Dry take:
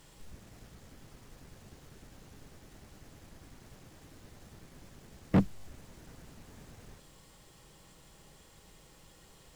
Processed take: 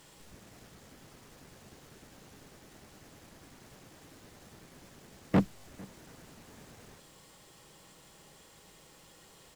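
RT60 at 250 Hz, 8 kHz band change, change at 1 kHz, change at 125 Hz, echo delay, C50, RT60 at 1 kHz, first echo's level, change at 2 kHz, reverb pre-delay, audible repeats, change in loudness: none, +2.5 dB, +2.5 dB, -2.0 dB, 0.451 s, none, none, -23.5 dB, +2.5 dB, none, 1, -4.5 dB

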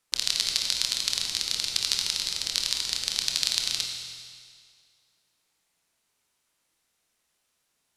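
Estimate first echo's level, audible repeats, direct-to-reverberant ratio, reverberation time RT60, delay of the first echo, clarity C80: none, none, 2.0 dB, 2.0 s, none, 4.5 dB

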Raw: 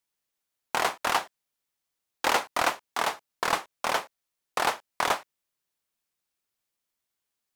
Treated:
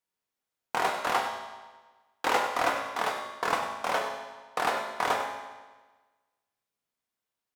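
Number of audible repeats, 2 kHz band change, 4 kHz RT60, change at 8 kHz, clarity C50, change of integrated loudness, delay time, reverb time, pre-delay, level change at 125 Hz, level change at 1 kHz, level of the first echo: 1, -1.5 dB, 1.2 s, -6.0 dB, 3.5 dB, -1.5 dB, 97 ms, 1.3 s, 3 ms, -1.0 dB, 0.0 dB, -10.5 dB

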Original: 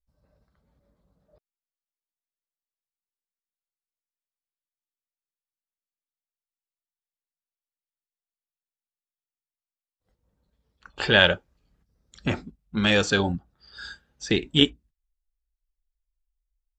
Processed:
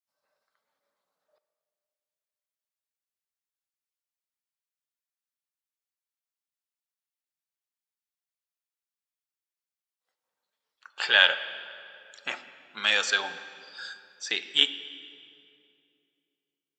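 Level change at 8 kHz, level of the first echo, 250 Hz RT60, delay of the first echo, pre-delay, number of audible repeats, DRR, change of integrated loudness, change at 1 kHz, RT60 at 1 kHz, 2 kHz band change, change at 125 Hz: 0.0 dB, none, 3.0 s, none, 12 ms, none, 11.0 dB, -1.5 dB, -3.0 dB, 2.4 s, 0.0 dB, under -30 dB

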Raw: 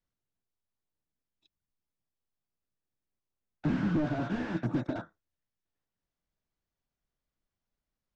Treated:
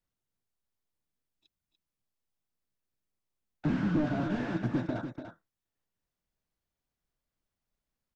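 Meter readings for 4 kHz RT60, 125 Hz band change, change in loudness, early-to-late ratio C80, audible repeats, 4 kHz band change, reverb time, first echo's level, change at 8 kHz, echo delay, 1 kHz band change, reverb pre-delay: none, +0.5 dB, +0.5 dB, none, 1, +0.5 dB, none, -8.5 dB, n/a, 0.292 s, +0.5 dB, none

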